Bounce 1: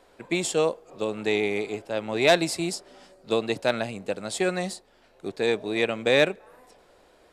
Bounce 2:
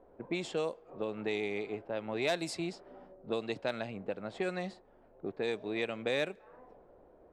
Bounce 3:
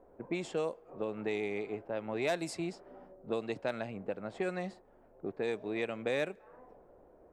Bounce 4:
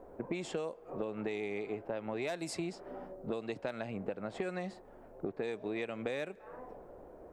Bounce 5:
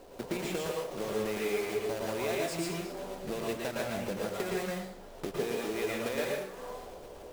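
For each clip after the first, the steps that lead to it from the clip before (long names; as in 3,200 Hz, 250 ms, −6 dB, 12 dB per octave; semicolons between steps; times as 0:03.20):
low-pass that shuts in the quiet parts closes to 680 Hz, open at −18 dBFS; downward compressor 2 to 1, threshold −39 dBFS, peak gain reduction 14 dB
parametric band 3,800 Hz −6 dB 1 octave
downward compressor 6 to 1, threshold −42 dBFS, peak gain reduction 14 dB; level +7.5 dB
one scale factor per block 3 bits; dense smooth reverb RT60 0.58 s, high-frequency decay 0.75×, pre-delay 100 ms, DRR −3 dB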